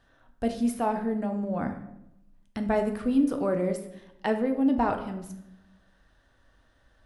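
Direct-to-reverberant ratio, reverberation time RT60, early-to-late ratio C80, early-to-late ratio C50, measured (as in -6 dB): 5.0 dB, 0.85 s, 12.5 dB, 9.5 dB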